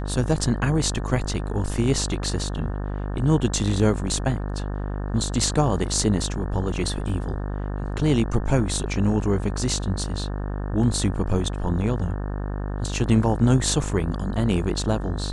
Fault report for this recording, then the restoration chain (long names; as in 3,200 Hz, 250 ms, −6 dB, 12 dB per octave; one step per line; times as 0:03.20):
mains buzz 50 Hz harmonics 36 −28 dBFS
0:07.09: drop-out 2.7 ms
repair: hum removal 50 Hz, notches 36
repair the gap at 0:07.09, 2.7 ms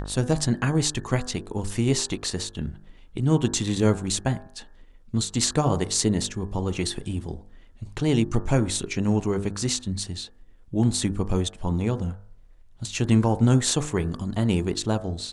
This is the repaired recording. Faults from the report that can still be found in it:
none of them is left